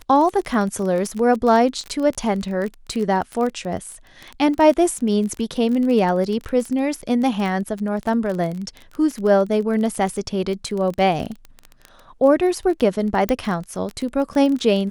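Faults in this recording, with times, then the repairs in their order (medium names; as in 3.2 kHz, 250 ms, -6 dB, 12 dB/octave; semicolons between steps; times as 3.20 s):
crackle 23 per s -24 dBFS
13.29 s: pop -7 dBFS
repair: de-click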